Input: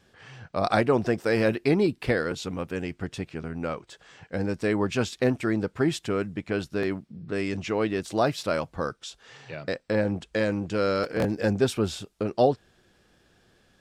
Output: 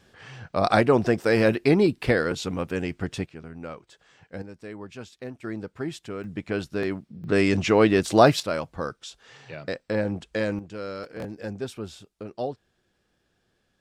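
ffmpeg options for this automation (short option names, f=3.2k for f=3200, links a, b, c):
-af "asetnsamples=n=441:p=0,asendcmd='3.26 volume volume -6.5dB;4.42 volume volume -14dB;5.44 volume volume -7.5dB;6.24 volume volume 0dB;7.24 volume volume 8dB;8.4 volume volume -1dB;10.59 volume volume -9.5dB',volume=3dB"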